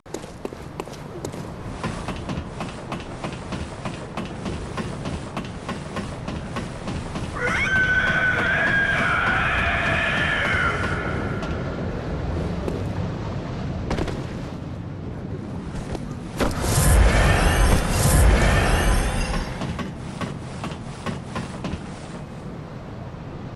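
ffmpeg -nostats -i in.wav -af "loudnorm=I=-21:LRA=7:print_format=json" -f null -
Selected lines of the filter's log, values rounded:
"input_i" : "-24.2",
"input_tp" : "-5.7",
"input_lra" : "12.7",
"input_thresh" : "-34.7",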